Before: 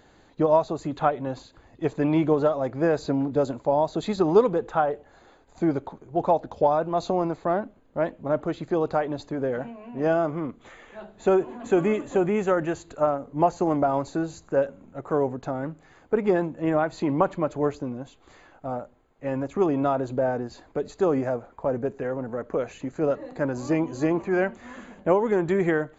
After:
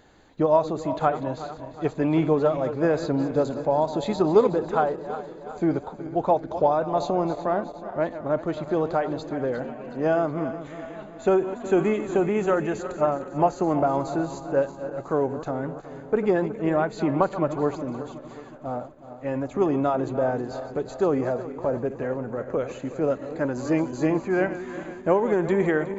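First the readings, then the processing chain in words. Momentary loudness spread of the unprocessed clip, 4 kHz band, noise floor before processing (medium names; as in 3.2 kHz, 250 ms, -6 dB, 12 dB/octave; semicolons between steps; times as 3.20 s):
11 LU, no reading, -57 dBFS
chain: backward echo that repeats 184 ms, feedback 72%, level -12 dB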